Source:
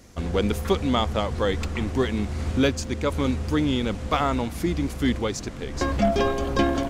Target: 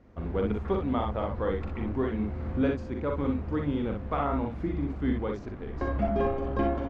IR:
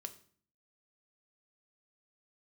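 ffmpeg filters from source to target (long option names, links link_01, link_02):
-af "lowpass=1500,aecho=1:1:42|61:0.501|0.562,volume=-6.5dB"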